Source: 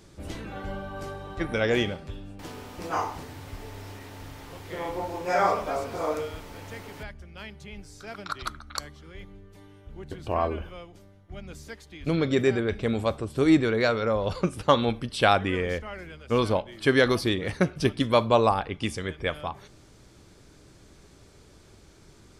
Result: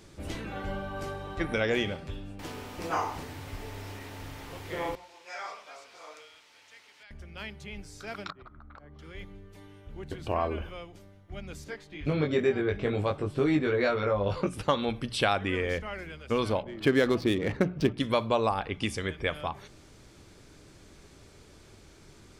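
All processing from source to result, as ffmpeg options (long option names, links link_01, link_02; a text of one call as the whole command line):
ffmpeg -i in.wav -filter_complex "[0:a]asettb=1/sr,asplit=3[link_01][link_02][link_03];[link_01]atrim=end=4.954[link_04];[link_02]atrim=start=4.95:end=7.11,asetpts=PTS-STARTPTS,afade=type=in:duration=0.004:curve=qsin,afade=type=out:start_time=2.156:duration=0.004:curve=qsin,lowpass=4500,aderivative[link_05];[link_03]atrim=start=7.106[link_06];[link_04][link_05]acrossfade=duration=0.004:curve1=hsin:curve2=qsin[link_07];[link_07][link_06]acrossfade=duration=0.004:curve1=qsin:curve2=hsin,asettb=1/sr,asplit=3[link_08][link_09][link_10];[link_08]atrim=end=8.304[link_11];[link_09]atrim=start=8.3:end=8.99,asetpts=PTS-STARTPTS,afade=type=in:duration=0.004:curve=qsin,afade=type=out:start_time=0.686:duration=0.004:curve=qsin,lowpass=1100,acompressor=threshold=-45dB:ratio=10:attack=3.2:release=140:knee=1:detection=peak[link_12];[link_10]atrim=start=8.986[link_13];[link_11][link_12]acrossfade=duration=0.004:curve1=hsin:curve2=qsin[link_14];[link_14][link_13]acrossfade=duration=0.004:curve1=qsin:curve2=hsin,asettb=1/sr,asplit=3[link_15][link_16][link_17];[link_15]atrim=end=11.644[link_18];[link_16]atrim=start=11.64:end=14.47,asetpts=PTS-STARTPTS,afade=type=in:duration=0.004:curve=qsin,afade=type=out:start_time=2.826:duration=0.004:curve=qsin,lowpass=frequency=2600:poles=1,asplit=2[link_19][link_20];[link_20]adelay=20,volume=-2dB[link_21];[link_19][link_21]amix=inputs=2:normalize=0,atrim=end_sample=124803[link_22];[link_17]atrim=start=14.466[link_23];[link_18][link_22]acrossfade=duration=0.004:curve1=hsin:curve2=qsin[link_24];[link_24][link_23]acrossfade=duration=0.004:curve1=qsin:curve2=hsin,asettb=1/sr,asplit=3[link_25][link_26][link_27];[link_25]atrim=end=16.634[link_28];[link_26]atrim=start=16.63:end=17.98,asetpts=PTS-STARTPTS,afade=type=in:duration=0.004:curve=qsin,afade=type=out:start_time=1.346:duration=0.004:curve=qsin,equalizer=frequency=270:width_type=o:width=2.6:gain=6.5,adynamicsmooth=sensitivity=5.5:basefreq=1800[link_29];[link_27]atrim=start=17.976[link_30];[link_28][link_29]acrossfade=duration=0.004:curve1=hsin:curve2=qsin[link_31];[link_31][link_30]acrossfade=duration=0.004:curve1=qsin:curve2=hsin,equalizer=frequency=2400:width=1.5:gain=2.5,acompressor=threshold=-26dB:ratio=2,bandreject=frequency=60:width_type=h:width=6,bandreject=frequency=120:width_type=h:width=6,bandreject=frequency=180:width_type=h:width=6" out.wav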